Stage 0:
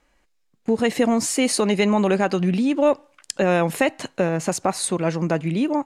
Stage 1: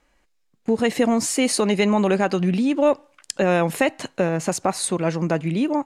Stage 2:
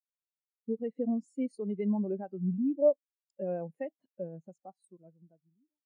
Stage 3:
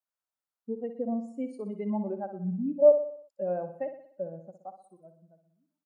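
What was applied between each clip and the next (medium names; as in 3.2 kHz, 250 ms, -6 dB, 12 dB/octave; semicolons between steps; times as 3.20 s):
no audible change
fade out at the end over 1.48 s; spectral contrast expander 2.5:1; trim -8 dB
high-order bell 930 Hz +8.5 dB; on a send: feedback delay 61 ms, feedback 51%, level -10 dB; on the sum: trim -2 dB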